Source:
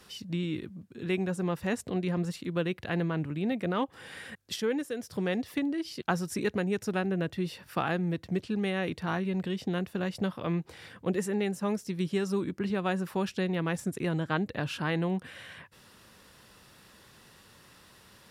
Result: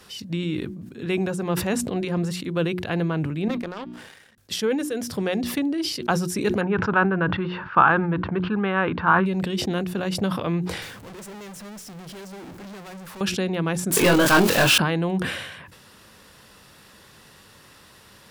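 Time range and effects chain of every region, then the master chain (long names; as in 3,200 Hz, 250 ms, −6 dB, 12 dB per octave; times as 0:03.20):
0:03.48–0:04.38: tuned comb filter 130 Hz, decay 1.1 s, harmonics odd + power curve on the samples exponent 2
0:06.61–0:09.26: low-pass filter 2,900 Hz 24 dB per octave + flat-topped bell 1,200 Hz +12 dB 1.1 octaves
0:10.82–0:13.21: converter with a step at zero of −44 dBFS + tube saturation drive 44 dB, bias 0.5
0:13.91–0:14.78: spike at every zero crossing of −25.5 dBFS + mid-hump overdrive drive 25 dB, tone 5,800 Hz, clips at −14.5 dBFS + double-tracking delay 22 ms −3 dB
whole clip: mains-hum notches 60/120/180/240/300/360 Hz; dynamic equaliser 1,900 Hz, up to −6 dB, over −55 dBFS, Q 6.8; level that may fall only so fast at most 49 dB per second; level +6 dB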